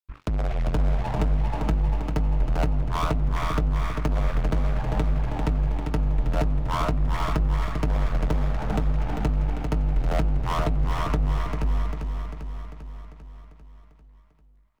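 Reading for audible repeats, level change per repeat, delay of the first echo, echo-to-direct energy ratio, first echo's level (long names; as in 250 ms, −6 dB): 14, repeats not evenly spaced, 396 ms, 0.0 dB, −6.0 dB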